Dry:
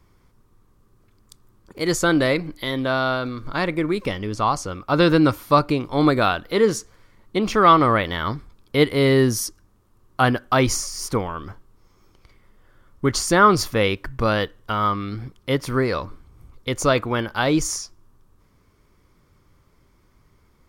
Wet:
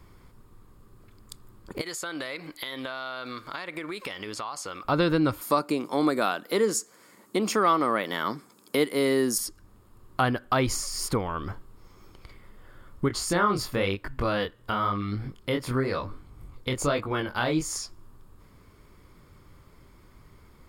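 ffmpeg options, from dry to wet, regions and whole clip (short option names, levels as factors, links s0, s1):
-filter_complex "[0:a]asettb=1/sr,asplit=3[s0][s1][s2];[s0]atrim=end=1.814[s3];[s1]atrim=start=1.81:end=4.85,asetpts=PTS-STARTPTS,afade=t=in:d=0.004:c=qsin,afade=t=out:st=3.036:d=0.004:c=qsin,highpass=f=1200:p=1,acompressor=threshold=0.0178:ratio=6:attack=3.2:release=140:knee=1:detection=peak[s4];[s2]atrim=start=4.846[s5];[s3][s4]acrossfade=d=0.004:c1=hsin:c2=qsin[s6];[s6][s5]acrossfade=d=0.004:c1=qsin:c2=hsin,asettb=1/sr,asplit=3[s7][s8][s9];[s7]atrim=end=5.414[s10];[s8]atrim=start=5.41:end=9.38,asetpts=PTS-STARTPTS,afade=t=in:d=0.004:c=qsin,afade=t=out:st=3.966:d=0.004:c=qsin,highpass=f=190:w=0.5412,highpass=f=190:w=1.3066,highshelf=f=4900:t=q:w=1.5:g=8[s11];[s9]atrim=start=9.376[s12];[s10][s11]acrossfade=d=0.004:c1=hsin:c2=qsin[s13];[s13][s12]acrossfade=d=0.004:c1=qsin:c2=hsin,asettb=1/sr,asplit=3[s14][s15][s16];[s14]atrim=end=13.084[s17];[s15]atrim=start=13.08:end=17.76,asetpts=PTS-STARTPTS,afade=t=in:d=0.004:c=qsin,afade=t=out:st=4.676:d=0.004:c=qsin,deesser=0.3,flanger=delay=19:depth=6.2:speed=1[s18];[s16]atrim=start=17.756[s19];[s17][s18]acrossfade=d=0.004:c1=hsin:c2=qsin[s20];[s20][s19]acrossfade=d=0.004:c1=qsin:c2=hsin,acompressor=threshold=0.0178:ratio=2,bandreject=f=5900:w=6,volume=1.78"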